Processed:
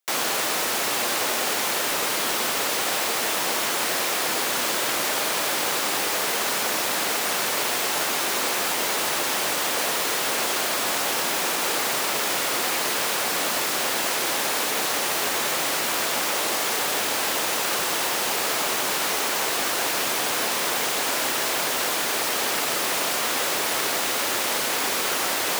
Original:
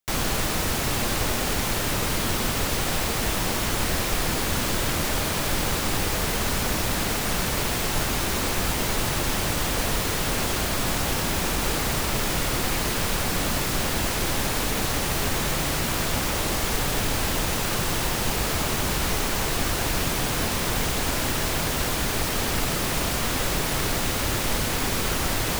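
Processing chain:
high-pass filter 430 Hz 12 dB per octave
level +3 dB

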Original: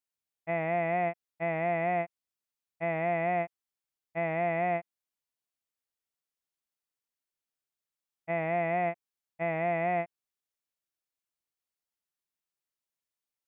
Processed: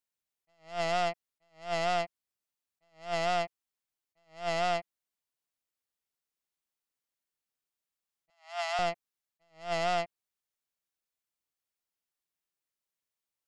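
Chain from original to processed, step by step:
stylus tracing distortion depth 0.21 ms
0:08.30–0:08.79: Butterworth high-pass 690 Hz 72 dB per octave
level that may rise only so fast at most 180 dB per second

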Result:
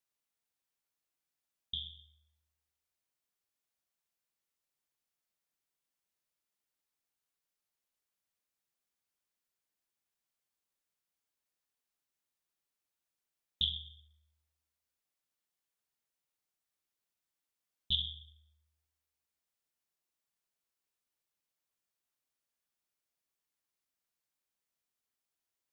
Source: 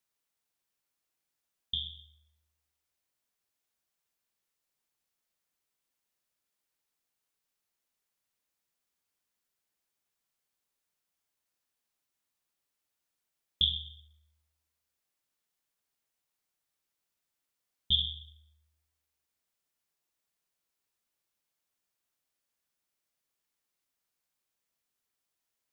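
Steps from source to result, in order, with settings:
highs frequency-modulated by the lows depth 0.17 ms
level −5 dB

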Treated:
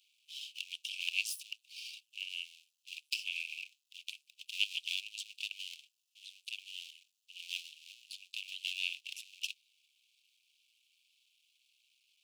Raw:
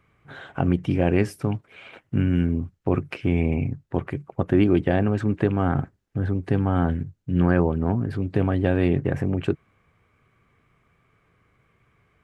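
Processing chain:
half-wave rectification
Butterworth high-pass 2,600 Hz 96 dB per octave
level +9 dB

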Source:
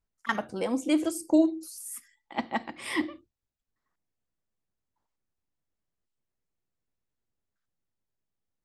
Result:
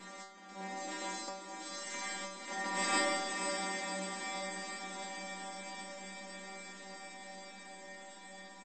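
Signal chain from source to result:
compressor on every frequency bin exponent 0.2
source passing by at 0:02.89, 5 m/s, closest 3 metres
high-shelf EQ 2,900 Hz +9.5 dB
comb filter 4 ms, depth 57%
in parallel at +2.5 dB: downward compressor, threshold −35 dBFS, peak gain reduction 20 dB
on the sum: volume swells 714 ms
linear-phase brick-wall low-pass 8,200 Hz
stiff-string resonator 190 Hz, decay 0.76 s, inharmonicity 0.002
feedback delay with all-pass diffusion 542 ms, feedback 56%, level −7 dB
level +7 dB

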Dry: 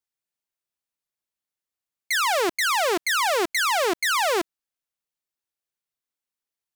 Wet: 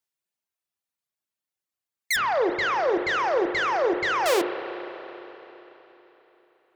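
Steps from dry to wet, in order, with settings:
0:02.16–0:04.26: variable-slope delta modulation 32 kbit/s
high-pass filter 58 Hz
reverb reduction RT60 2 s
mains-hum notches 60/120/180/240/300/360/420/480/540 Hz
harmonic and percussive parts rebalanced harmonic +5 dB
spring reverb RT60 3.8 s, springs 31/42 ms, chirp 40 ms, DRR 7.5 dB

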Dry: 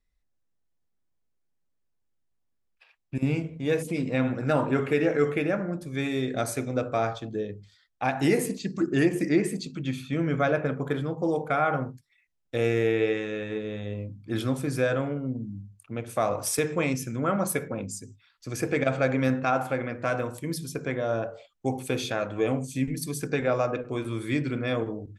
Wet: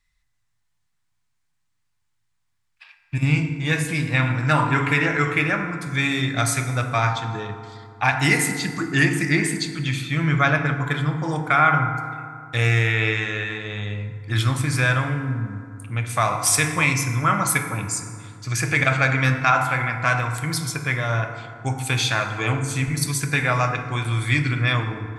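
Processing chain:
octave-band graphic EQ 125/250/500/1,000/2,000/4,000/8,000 Hz +10/−6/−10/+8/+8/+6/+8 dB
feedback delay network reverb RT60 2.3 s, low-frequency decay 1.2×, high-frequency decay 0.45×, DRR 6.5 dB
level +2.5 dB

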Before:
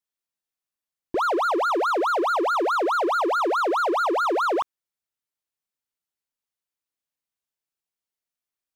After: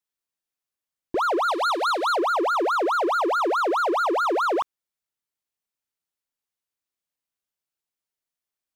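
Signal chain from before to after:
0:01.48–0:02.16: graphic EQ with 15 bands 400 Hz −7 dB, 4,000 Hz +9 dB, 10,000 Hz +7 dB

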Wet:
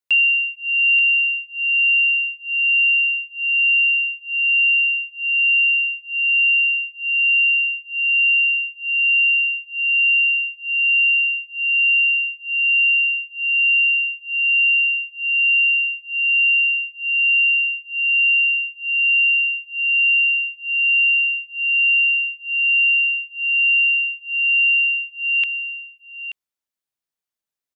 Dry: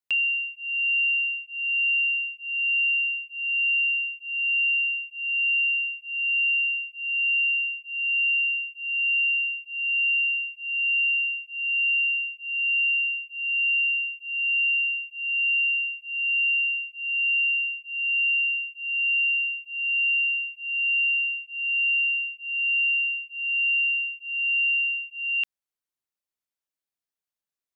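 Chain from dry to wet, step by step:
single-tap delay 881 ms −10.5 dB
dynamic equaliser 2,600 Hz, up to +7 dB, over −38 dBFS, Q 0.87
level +1.5 dB

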